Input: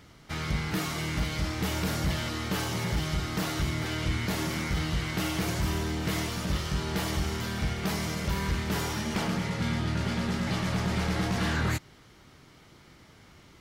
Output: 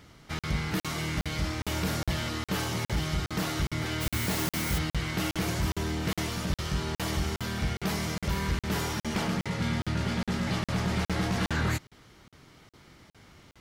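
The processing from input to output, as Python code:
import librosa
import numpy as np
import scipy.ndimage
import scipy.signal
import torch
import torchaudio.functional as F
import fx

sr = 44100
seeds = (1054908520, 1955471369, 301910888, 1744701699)

y = fx.quant_dither(x, sr, seeds[0], bits=6, dither='triangular', at=(4.0, 4.77), fade=0.02)
y = fx.buffer_crackle(y, sr, first_s=0.39, period_s=0.41, block=2048, kind='zero')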